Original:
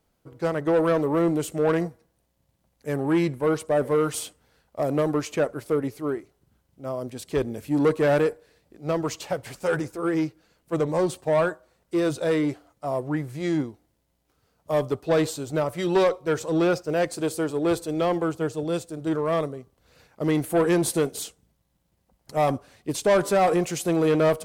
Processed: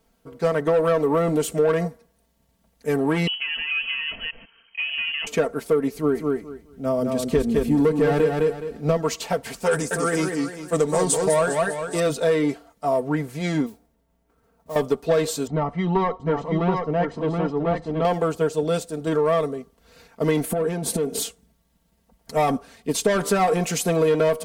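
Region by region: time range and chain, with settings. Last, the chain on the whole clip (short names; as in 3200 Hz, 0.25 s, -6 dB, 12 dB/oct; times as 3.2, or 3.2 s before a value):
3.27–5.27 reverse delay 0.148 s, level -7 dB + compressor 16:1, threshold -29 dBFS + inverted band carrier 3100 Hz
5.94–8.97 low shelf 210 Hz +10.5 dB + feedback echo 0.209 s, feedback 19%, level -4.5 dB
9.71–12 bell 8300 Hz +14.5 dB 1.1 oct + warbling echo 0.201 s, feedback 43%, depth 184 cents, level -6 dB
13.66–14.76 LPF 1600 Hz + compressor 2:1, threshold -43 dBFS + modulation noise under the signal 16 dB
15.47–18.05 tape spacing loss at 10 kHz 39 dB + comb 1 ms, depth 53% + echo 0.726 s -4.5 dB
20.51–21.23 bell 230 Hz +8 dB 3 oct + compressor 12:1, threshold -25 dBFS
whole clip: comb 4.4 ms, depth 75%; compressor, threshold -20 dBFS; gain +4 dB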